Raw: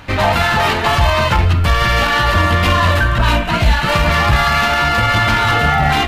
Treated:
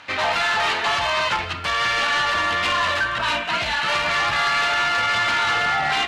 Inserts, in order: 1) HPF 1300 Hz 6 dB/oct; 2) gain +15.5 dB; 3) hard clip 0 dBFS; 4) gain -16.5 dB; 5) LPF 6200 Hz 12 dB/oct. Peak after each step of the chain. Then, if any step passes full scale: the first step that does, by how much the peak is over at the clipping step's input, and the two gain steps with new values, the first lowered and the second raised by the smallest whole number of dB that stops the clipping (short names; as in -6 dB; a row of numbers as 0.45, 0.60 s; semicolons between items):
-6.5, +9.0, 0.0, -16.5, -15.5 dBFS; step 2, 9.0 dB; step 2 +6.5 dB, step 4 -7.5 dB